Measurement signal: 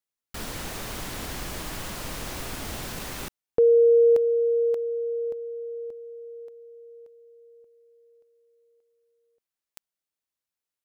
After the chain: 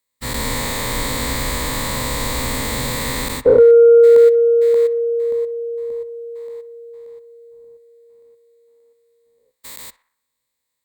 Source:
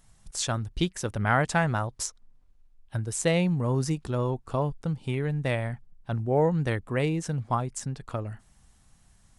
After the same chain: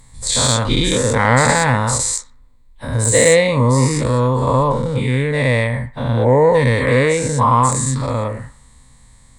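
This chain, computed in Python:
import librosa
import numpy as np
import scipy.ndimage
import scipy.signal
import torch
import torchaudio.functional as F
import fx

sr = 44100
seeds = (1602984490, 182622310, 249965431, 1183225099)

y = fx.spec_dilate(x, sr, span_ms=240)
y = fx.ripple_eq(y, sr, per_octave=1.0, db=11)
y = 10.0 ** (-5.5 / 20.0) * np.tanh(y / 10.0 ** (-5.5 / 20.0))
y = fx.echo_banded(y, sr, ms=61, feedback_pct=55, hz=1300.0, wet_db=-15)
y = F.gain(torch.from_numpy(y), 5.5).numpy()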